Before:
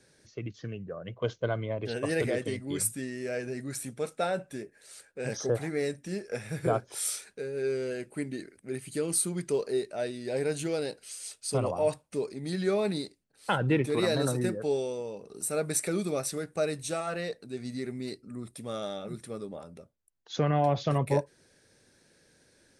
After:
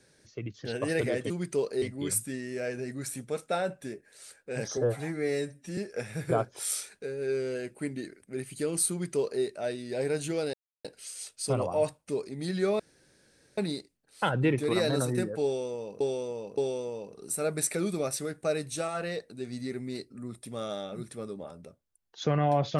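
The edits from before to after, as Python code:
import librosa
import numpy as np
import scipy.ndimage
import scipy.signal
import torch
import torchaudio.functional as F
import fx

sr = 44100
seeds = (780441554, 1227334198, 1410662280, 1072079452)

y = fx.edit(x, sr, fx.cut(start_s=0.65, length_s=1.21),
    fx.stretch_span(start_s=5.46, length_s=0.67, factor=1.5),
    fx.duplicate(start_s=9.26, length_s=0.52, to_s=2.51),
    fx.insert_silence(at_s=10.89, length_s=0.31),
    fx.insert_room_tone(at_s=12.84, length_s=0.78),
    fx.repeat(start_s=14.7, length_s=0.57, count=3), tone=tone)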